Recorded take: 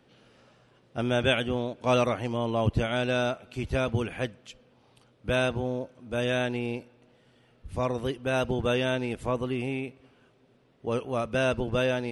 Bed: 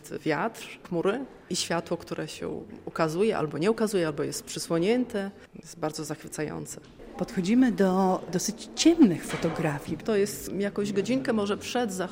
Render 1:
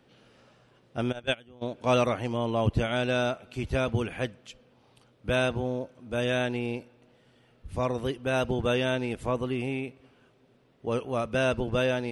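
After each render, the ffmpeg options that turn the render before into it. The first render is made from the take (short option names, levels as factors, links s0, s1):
-filter_complex "[0:a]asplit=3[s0][s1][s2];[s0]afade=t=out:st=1.11:d=0.02[s3];[s1]agate=range=0.0708:threshold=0.0794:ratio=16:release=100:detection=peak,afade=t=in:st=1.11:d=0.02,afade=t=out:st=1.61:d=0.02[s4];[s2]afade=t=in:st=1.61:d=0.02[s5];[s3][s4][s5]amix=inputs=3:normalize=0"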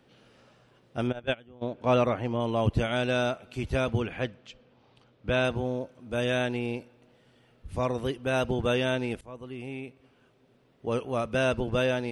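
-filter_complex "[0:a]asettb=1/sr,asplit=3[s0][s1][s2];[s0]atrim=end=1.074[s3];[s1]atrim=start=1.07:end=2.4,asetpts=PTS-STARTPTS,afade=t=in:d=0.004:c=qsin,afade=t=out:st=1.326:d=0.004:c=qsin,aemphasis=mode=reproduction:type=75fm[s4];[s2]atrim=start=2.396[s5];[s3][s4]acrossfade=d=0.004:c1=hsin:c2=qsin[s6];[s6][s5]acrossfade=d=0.004:c1=qsin:c2=hsin,asettb=1/sr,asplit=3[s7][s8][s9];[s7]atrim=end=3.984[s10];[s8]atrim=start=3.98:end=5.45,asetpts=PTS-STARTPTS,afade=t=in:d=0.004:c=qsin,afade=t=out:st=1.466:d=0.004:c=qsin,lowpass=5000[s11];[s9]atrim=start=5.446[s12];[s10][s11]acrossfade=d=0.004:c1=hsin:c2=qsin[s13];[s13][s12]acrossfade=d=0.004:c1=qsin:c2=hsin,asplit=2[s14][s15];[s14]atrim=end=9.21,asetpts=PTS-STARTPTS,afade=t=out:st=9.206:d=0.004:c=hsin:silence=0.0891251[s16];[s15]atrim=start=9.21,asetpts=PTS-STARTPTS,afade=t=in:d=1.8:c=qsin:silence=0.0891251[s17];[s16][s17]concat=n=2:v=0:a=1"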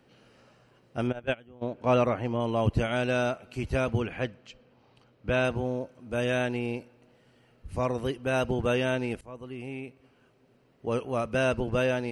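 -af "bandreject=f=3500:w=7.7"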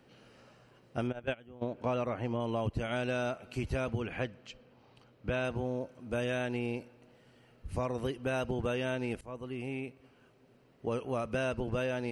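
-af "acompressor=threshold=0.0316:ratio=5"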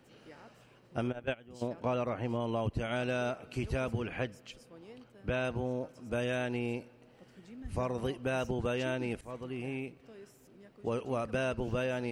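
-filter_complex "[1:a]volume=0.0422[s0];[0:a][s0]amix=inputs=2:normalize=0"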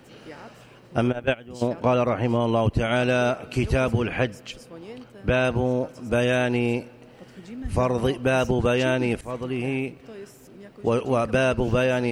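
-af "volume=3.76"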